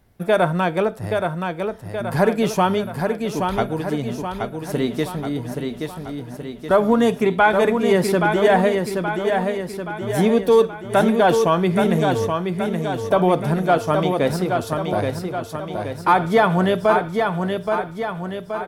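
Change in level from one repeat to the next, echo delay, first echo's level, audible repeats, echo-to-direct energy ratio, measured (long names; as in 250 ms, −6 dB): −5.5 dB, 825 ms, −5.0 dB, 6, −3.5 dB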